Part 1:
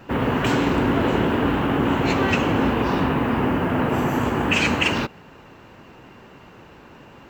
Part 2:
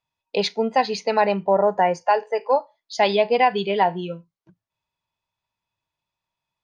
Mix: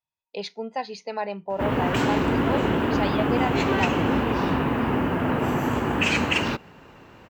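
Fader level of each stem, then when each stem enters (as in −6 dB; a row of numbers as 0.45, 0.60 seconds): −2.5, −10.5 decibels; 1.50, 0.00 seconds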